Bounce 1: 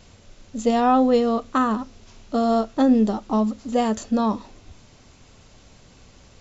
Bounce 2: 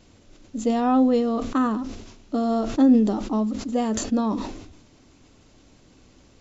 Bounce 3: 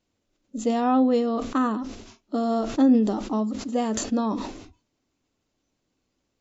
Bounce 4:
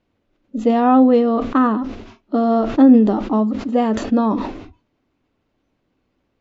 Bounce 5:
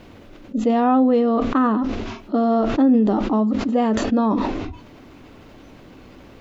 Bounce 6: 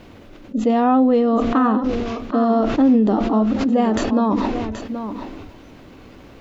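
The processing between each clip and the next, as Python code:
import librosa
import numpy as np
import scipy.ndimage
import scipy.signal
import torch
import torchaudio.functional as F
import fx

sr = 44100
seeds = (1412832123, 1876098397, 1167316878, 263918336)

y1 = fx.peak_eq(x, sr, hz=300.0, db=10.5, octaves=0.64)
y1 = fx.sustainer(y1, sr, db_per_s=57.0)
y1 = y1 * librosa.db_to_amplitude(-6.0)
y2 = fx.noise_reduce_blind(y1, sr, reduce_db=20)
y2 = fx.low_shelf(y2, sr, hz=160.0, db=-6.5)
y3 = scipy.signal.sosfilt(scipy.signal.butter(2, 2600.0, 'lowpass', fs=sr, output='sos'), y2)
y3 = y3 * librosa.db_to_amplitude(8.0)
y4 = fx.env_flatten(y3, sr, amount_pct=50)
y4 = y4 * librosa.db_to_amplitude(-6.5)
y5 = y4 + 10.0 ** (-10.0 / 20.0) * np.pad(y4, (int(777 * sr / 1000.0), 0))[:len(y4)]
y5 = y5 * librosa.db_to_amplitude(1.0)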